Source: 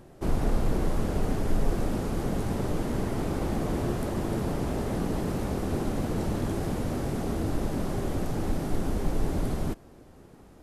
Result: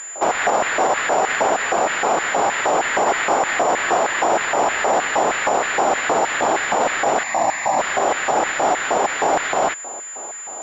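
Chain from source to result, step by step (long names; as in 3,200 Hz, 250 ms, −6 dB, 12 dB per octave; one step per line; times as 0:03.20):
0:07.23–0:07.79: phaser with its sweep stopped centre 2,100 Hz, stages 8
auto-filter high-pass square 3.2 Hz 740–1,800 Hz
boost into a limiter +28.5 dB
switching amplifier with a slow clock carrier 7,100 Hz
level −7.5 dB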